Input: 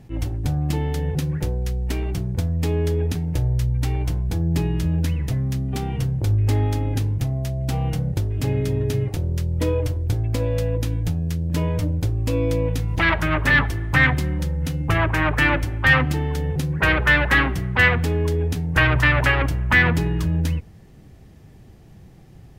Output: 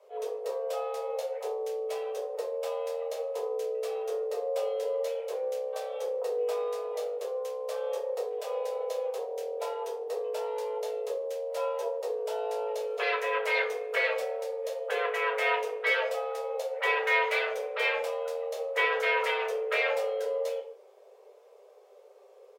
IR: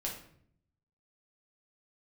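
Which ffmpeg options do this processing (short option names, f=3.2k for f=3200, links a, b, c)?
-filter_complex "[0:a]afreqshift=380,asplit=2[a][b];[b]adelay=150,highpass=300,lowpass=3.4k,asoftclip=type=hard:threshold=-12dB,volume=-22dB[c];[a][c]amix=inputs=2:normalize=0[d];[1:a]atrim=start_sample=2205,asetrate=74970,aresample=44100[e];[d][e]afir=irnorm=-1:irlink=0,volume=-6.5dB"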